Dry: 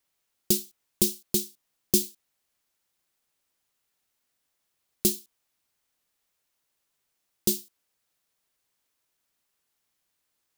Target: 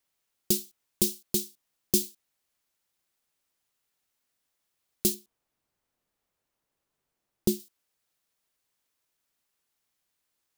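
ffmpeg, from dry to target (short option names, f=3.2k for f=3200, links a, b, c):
-filter_complex "[0:a]asettb=1/sr,asplit=3[a][b][c];[a]atrim=end=5.144[d];[b]atrim=start=5.14:end=7.6,asetpts=PTS-STARTPTS,afade=t=in:d=0.004:c=qsin,afade=t=out:st=2.456:d=0.004:c=qsin,tiltshelf=f=1.4k:g=6[e];[c]atrim=start=7.596[f];[d][e]acrossfade=d=0.004:c1=hsin:c2=qsin[g];[g][f]acrossfade=d=0.004:c1=qsin:c2=hsin,volume=-2dB"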